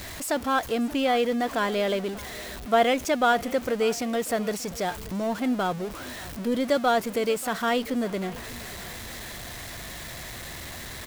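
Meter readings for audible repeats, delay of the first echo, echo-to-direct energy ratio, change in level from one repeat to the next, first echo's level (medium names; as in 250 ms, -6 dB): 2, 586 ms, -19.0 dB, -7.0 dB, -20.0 dB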